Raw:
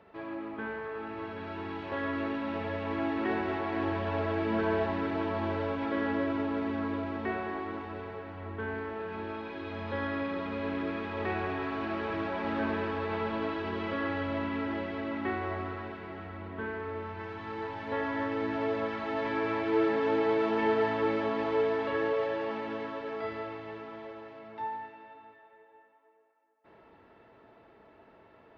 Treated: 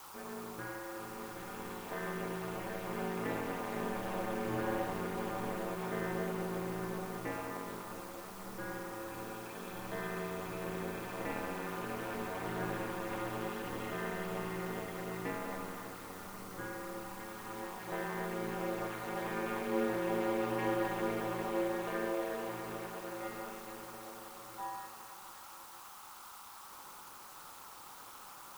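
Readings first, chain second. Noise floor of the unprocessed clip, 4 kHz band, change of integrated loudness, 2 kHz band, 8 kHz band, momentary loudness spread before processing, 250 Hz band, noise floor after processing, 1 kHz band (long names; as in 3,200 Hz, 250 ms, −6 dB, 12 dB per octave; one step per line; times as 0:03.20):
−59 dBFS, −3.5 dB, −6.5 dB, −6.0 dB, can't be measured, 12 LU, −7.0 dB, −52 dBFS, −5.0 dB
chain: bit-depth reduction 8 bits, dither triangular
ring modulation 100 Hz
noise in a band 780–1,400 Hz −51 dBFS
level −3.5 dB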